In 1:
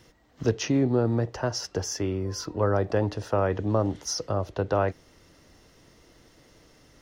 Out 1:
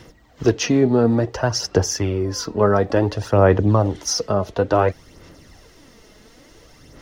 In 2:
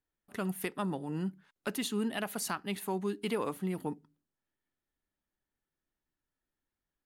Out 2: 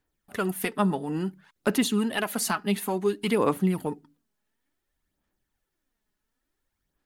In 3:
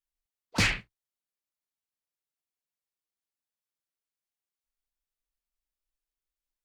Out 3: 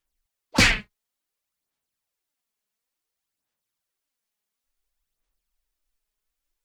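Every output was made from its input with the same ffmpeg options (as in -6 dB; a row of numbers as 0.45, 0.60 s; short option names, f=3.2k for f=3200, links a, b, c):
-af "aphaser=in_gain=1:out_gain=1:delay=4.8:decay=0.47:speed=0.57:type=sinusoidal,volume=7dB"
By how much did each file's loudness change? +8.0, +8.5, +7.5 LU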